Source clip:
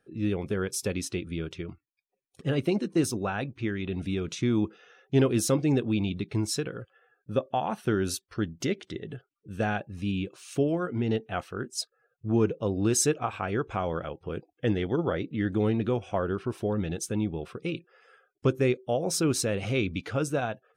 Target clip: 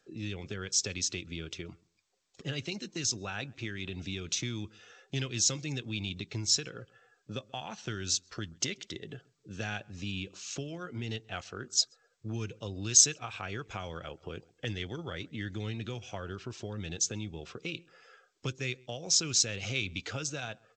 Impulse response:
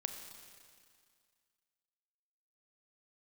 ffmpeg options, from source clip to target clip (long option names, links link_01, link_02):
-filter_complex "[0:a]bandreject=frequency=1100:width=29,acrossover=split=140|1800|2000[link_01][link_02][link_03][link_04];[link_02]acompressor=threshold=-38dB:ratio=16[link_05];[link_01][link_05][link_03][link_04]amix=inputs=4:normalize=0,bass=frequency=250:gain=-5,treble=frequency=4000:gain=10,asplit=2[link_06][link_07];[link_07]adelay=132,lowpass=frequency=1300:poles=1,volume=-24dB,asplit=2[link_08][link_09];[link_09]adelay=132,lowpass=frequency=1300:poles=1,volume=0.22[link_10];[link_06][link_08][link_10]amix=inputs=3:normalize=0" -ar 16000 -c:a g722